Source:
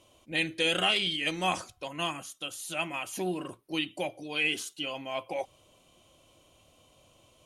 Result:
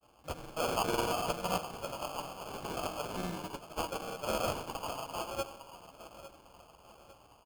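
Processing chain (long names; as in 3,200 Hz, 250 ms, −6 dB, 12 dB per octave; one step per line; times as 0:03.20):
one scale factor per block 3 bits
elliptic low-pass filter 7,500 Hz
parametric band 280 Hz −14 dB 2.1 octaves
tuned comb filter 61 Hz, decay 0.22 s, harmonics odd, mix 80%
hum removal 99.69 Hz, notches 31
in parallel at 0 dB: downward compressor, threshold −46 dBFS, peak gain reduction 15 dB
on the sum: dynamic equaliser 2,400 Hz, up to −3 dB, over −44 dBFS, Q 0.95
granular cloud, pitch spread up and down by 0 semitones
on a send at −12.5 dB: convolution reverb RT60 1.2 s, pre-delay 41 ms
on the sum: automatic gain control gain up to 3 dB
repeating echo 853 ms, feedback 47%, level −15 dB
decimation without filtering 23×
level +3.5 dB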